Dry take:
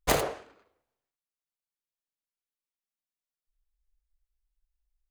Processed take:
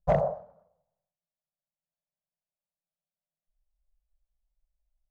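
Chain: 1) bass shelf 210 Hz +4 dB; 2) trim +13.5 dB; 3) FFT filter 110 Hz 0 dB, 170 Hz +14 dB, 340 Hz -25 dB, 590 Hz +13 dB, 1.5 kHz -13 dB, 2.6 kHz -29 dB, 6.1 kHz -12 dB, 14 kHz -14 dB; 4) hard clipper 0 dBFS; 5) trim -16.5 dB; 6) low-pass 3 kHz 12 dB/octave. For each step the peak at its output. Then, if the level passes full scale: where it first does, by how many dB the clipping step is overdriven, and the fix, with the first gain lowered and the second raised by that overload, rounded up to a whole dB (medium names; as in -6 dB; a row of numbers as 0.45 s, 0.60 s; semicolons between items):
-9.5 dBFS, +4.0 dBFS, +7.0 dBFS, 0.0 dBFS, -16.5 dBFS, -16.0 dBFS; step 2, 7.0 dB; step 2 +6.5 dB, step 5 -9.5 dB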